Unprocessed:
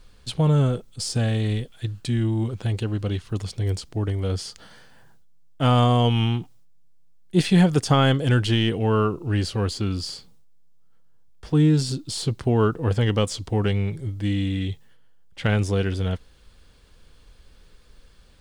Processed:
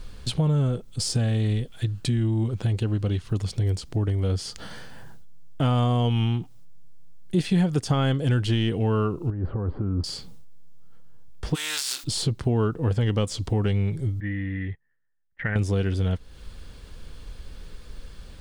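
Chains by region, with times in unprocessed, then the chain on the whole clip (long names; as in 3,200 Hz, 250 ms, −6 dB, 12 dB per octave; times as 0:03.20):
0:09.30–0:10.04: low-pass filter 1,300 Hz 24 dB per octave + compressor whose output falls as the input rises −30 dBFS
0:11.54–0:12.03: compressing power law on the bin magnitudes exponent 0.53 + high-pass filter 1,400 Hz + downward compressor 2.5 to 1, threshold −27 dBFS
0:14.20–0:15.56: transistor ladder low-pass 1,900 Hz, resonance 85% + noise gate −48 dBFS, range −21 dB
whole clip: low-shelf EQ 330 Hz +5 dB; downward compressor 2.5 to 1, threshold −34 dBFS; level +7 dB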